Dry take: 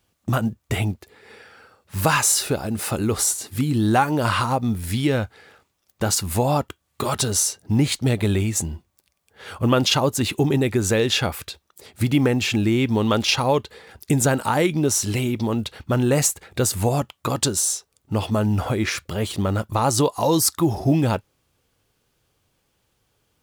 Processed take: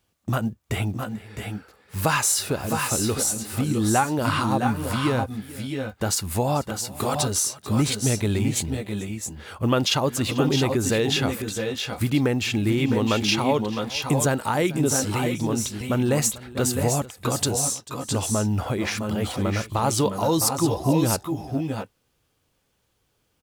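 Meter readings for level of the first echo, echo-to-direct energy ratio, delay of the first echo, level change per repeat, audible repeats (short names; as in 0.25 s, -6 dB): -19.5 dB, -5.0 dB, 0.442 s, no steady repeat, 2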